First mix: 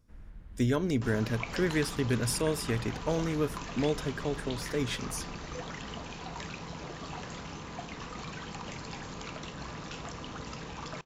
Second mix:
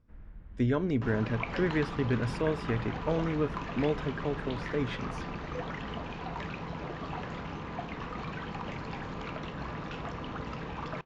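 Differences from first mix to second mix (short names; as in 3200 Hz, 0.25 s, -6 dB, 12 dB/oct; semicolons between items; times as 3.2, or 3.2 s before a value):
second sound +3.5 dB; master: add LPF 2500 Hz 12 dB/oct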